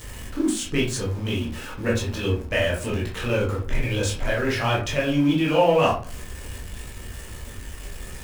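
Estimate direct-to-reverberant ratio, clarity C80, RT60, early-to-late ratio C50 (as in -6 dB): -4.5 dB, 12.0 dB, 0.45 s, 6.0 dB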